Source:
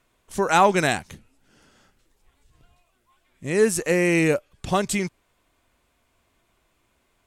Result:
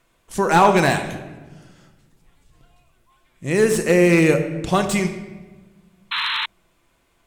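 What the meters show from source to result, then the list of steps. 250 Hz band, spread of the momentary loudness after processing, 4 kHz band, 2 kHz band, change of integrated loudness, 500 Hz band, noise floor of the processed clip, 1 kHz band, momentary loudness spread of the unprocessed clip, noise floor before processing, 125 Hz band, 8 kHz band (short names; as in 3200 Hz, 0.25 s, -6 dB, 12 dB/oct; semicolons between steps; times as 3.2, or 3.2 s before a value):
+5.5 dB, 17 LU, +7.5 dB, +3.5 dB, +3.5 dB, +4.0 dB, -64 dBFS, +3.5 dB, 12 LU, -69 dBFS, +6.5 dB, +0.5 dB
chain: shoebox room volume 840 m³, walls mixed, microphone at 0.75 m; painted sound noise, 6.11–6.46, 860–4200 Hz -26 dBFS; slew limiter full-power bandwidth 310 Hz; gain +3 dB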